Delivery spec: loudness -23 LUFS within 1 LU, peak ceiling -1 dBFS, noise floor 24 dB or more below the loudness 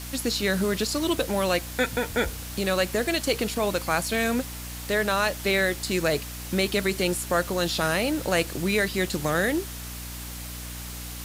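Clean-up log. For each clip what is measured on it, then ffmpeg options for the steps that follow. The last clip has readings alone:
hum 60 Hz; harmonics up to 300 Hz; hum level -37 dBFS; noise floor -37 dBFS; noise floor target -50 dBFS; loudness -26.0 LUFS; peak -9.5 dBFS; loudness target -23.0 LUFS
-> -af "bandreject=f=60:t=h:w=4,bandreject=f=120:t=h:w=4,bandreject=f=180:t=h:w=4,bandreject=f=240:t=h:w=4,bandreject=f=300:t=h:w=4"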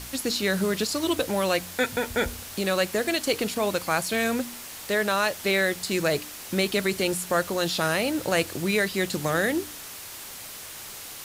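hum none; noise floor -40 dBFS; noise floor target -50 dBFS
-> -af "afftdn=nr=10:nf=-40"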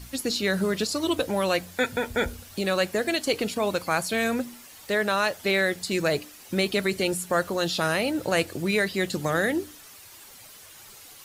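noise floor -48 dBFS; noise floor target -50 dBFS
-> -af "afftdn=nr=6:nf=-48"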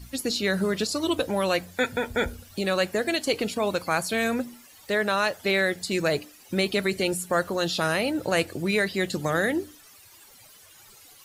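noise floor -52 dBFS; loudness -26.0 LUFS; peak -11.0 dBFS; loudness target -23.0 LUFS
-> -af "volume=3dB"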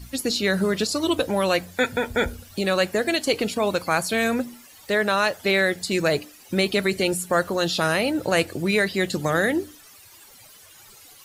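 loudness -23.0 LUFS; peak -8.0 dBFS; noise floor -49 dBFS

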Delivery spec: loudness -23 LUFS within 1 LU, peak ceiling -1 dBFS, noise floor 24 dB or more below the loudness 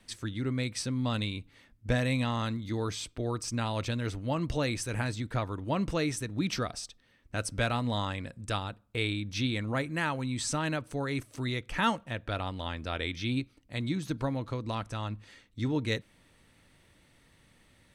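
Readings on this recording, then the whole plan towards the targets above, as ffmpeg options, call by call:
loudness -33.0 LUFS; peak -14.5 dBFS; loudness target -23.0 LUFS
-> -af "volume=10dB"

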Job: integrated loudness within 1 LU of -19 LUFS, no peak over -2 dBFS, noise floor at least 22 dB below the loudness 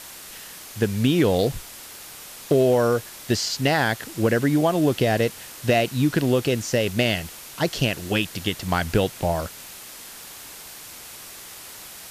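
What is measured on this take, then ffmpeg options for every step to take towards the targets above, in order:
noise floor -41 dBFS; noise floor target -45 dBFS; loudness -22.5 LUFS; peak -9.0 dBFS; loudness target -19.0 LUFS
-> -af "afftdn=nr=6:nf=-41"
-af "volume=3.5dB"

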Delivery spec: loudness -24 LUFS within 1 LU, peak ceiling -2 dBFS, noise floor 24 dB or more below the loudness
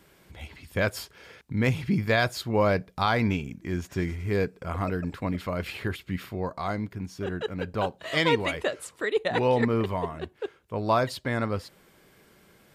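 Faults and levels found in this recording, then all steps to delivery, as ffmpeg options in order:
loudness -28.0 LUFS; peak -10.5 dBFS; loudness target -24.0 LUFS
-> -af "volume=4dB"

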